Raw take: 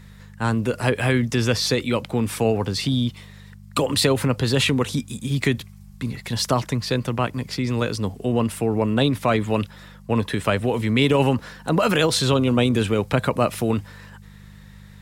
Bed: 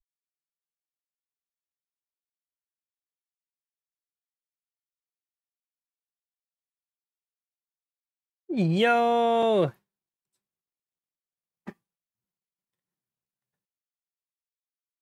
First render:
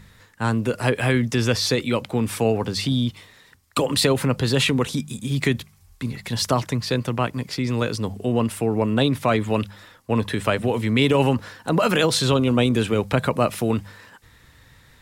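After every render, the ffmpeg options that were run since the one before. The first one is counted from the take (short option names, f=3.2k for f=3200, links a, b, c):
-af "bandreject=f=50:t=h:w=4,bandreject=f=100:t=h:w=4,bandreject=f=150:t=h:w=4,bandreject=f=200:t=h:w=4"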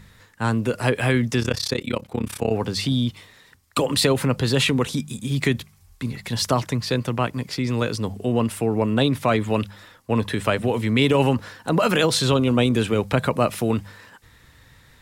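-filter_complex "[0:a]asplit=3[a][b][c];[a]afade=t=out:st=1.4:d=0.02[d];[b]tremolo=f=33:d=0.947,afade=t=in:st=1.4:d=0.02,afade=t=out:st=2.5:d=0.02[e];[c]afade=t=in:st=2.5:d=0.02[f];[d][e][f]amix=inputs=3:normalize=0"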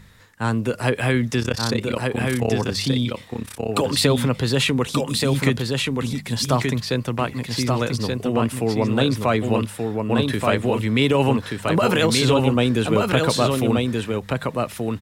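-af "aecho=1:1:1179:0.668"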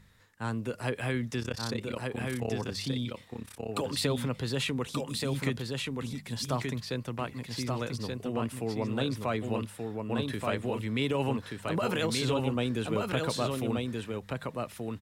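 -af "volume=-11.5dB"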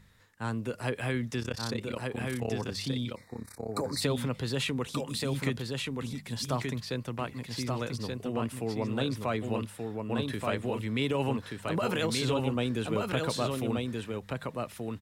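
-filter_complex "[0:a]asplit=3[a][b][c];[a]afade=t=out:st=3.14:d=0.02[d];[b]asuperstop=centerf=3000:order=12:qfactor=2,afade=t=in:st=3.14:d=0.02,afade=t=out:st=4:d=0.02[e];[c]afade=t=in:st=4:d=0.02[f];[d][e][f]amix=inputs=3:normalize=0"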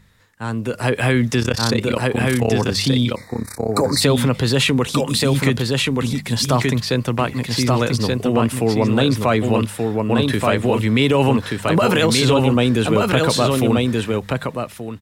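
-filter_complex "[0:a]asplit=2[a][b];[b]alimiter=level_in=0.5dB:limit=-24dB:level=0:latency=1:release=28,volume=-0.5dB,volume=0dB[c];[a][c]amix=inputs=2:normalize=0,dynaudnorm=f=130:g=11:m=10.5dB"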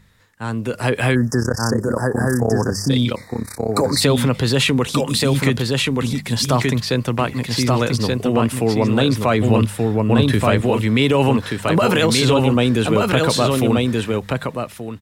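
-filter_complex "[0:a]asplit=3[a][b][c];[a]afade=t=out:st=1.14:d=0.02[d];[b]asuperstop=centerf=3000:order=20:qfactor=0.98,afade=t=in:st=1.14:d=0.02,afade=t=out:st=2.89:d=0.02[e];[c]afade=t=in:st=2.89:d=0.02[f];[d][e][f]amix=inputs=3:normalize=0,asettb=1/sr,asplit=3[g][h][i];[g]atrim=end=9.404[j];[h]atrim=start=9.4:end=10.61,asetpts=PTS-STARTPTS,afade=t=in:d=0.004:c=qsin,afade=t=out:st=1.206:d=0.004:c=qsin,lowshelf=f=140:g=9[k];[i]atrim=start=10.606[l];[j][k]acrossfade=d=0.004:c1=hsin:c2=qsin[m];[m][l]acrossfade=d=0.004:c1=qsin:c2=hsin"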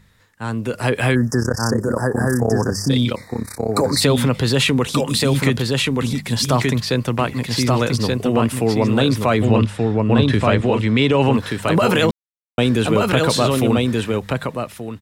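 -filter_complex "[0:a]asettb=1/sr,asplit=3[a][b][c];[a]atrim=end=9.454[d];[b]atrim=start=9.45:end=11.33,asetpts=PTS-STARTPTS,afade=t=in:d=0.004:c=qsin,afade=t=out:st=1.876:d=0.004:c=qsin,lowpass=6.1k[e];[c]atrim=start=11.326[f];[d][e]acrossfade=d=0.004:c1=hsin:c2=qsin[g];[g][f]acrossfade=d=0.004:c1=qsin:c2=hsin,asplit=3[h][i][j];[h]atrim=end=12.11,asetpts=PTS-STARTPTS,afade=t=out:st=12.106:d=0.004:c=hsin[k];[i]atrim=start=12.11:end=12.58,asetpts=PTS-STARTPTS,volume=0[l];[j]atrim=start=12.58,asetpts=PTS-STARTPTS,afade=t=in:d=0.004:c=hsin[m];[k][l][m]concat=n=3:v=0:a=1"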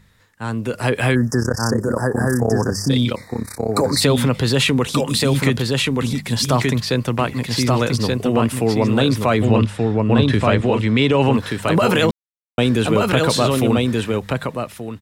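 -af anull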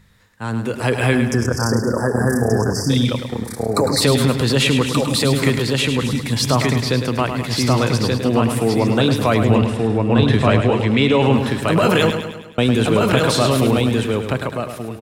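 -af "aecho=1:1:105|210|315|420|525|630:0.398|0.211|0.112|0.0593|0.0314|0.0166"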